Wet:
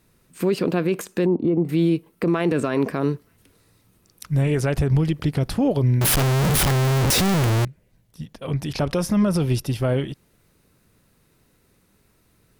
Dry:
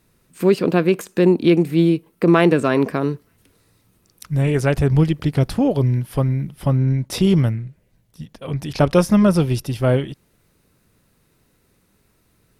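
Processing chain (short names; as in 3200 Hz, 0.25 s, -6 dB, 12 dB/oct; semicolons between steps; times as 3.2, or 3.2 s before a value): 6.01–7.65 infinite clipping; limiter -12 dBFS, peak gain reduction 10.5 dB; 1.26–1.69 polynomial smoothing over 65 samples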